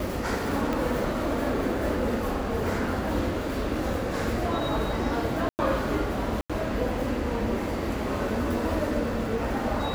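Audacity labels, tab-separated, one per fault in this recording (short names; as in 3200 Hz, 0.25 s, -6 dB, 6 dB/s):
0.730000	0.730000	pop
5.490000	5.590000	gap 99 ms
6.410000	6.500000	gap 86 ms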